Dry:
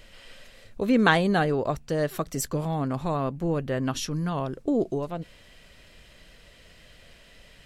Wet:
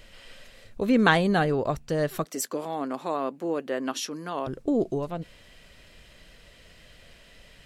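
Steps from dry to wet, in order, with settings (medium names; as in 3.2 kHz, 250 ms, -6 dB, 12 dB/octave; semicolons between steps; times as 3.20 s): 2.25–4.47 s: high-pass 260 Hz 24 dB/octave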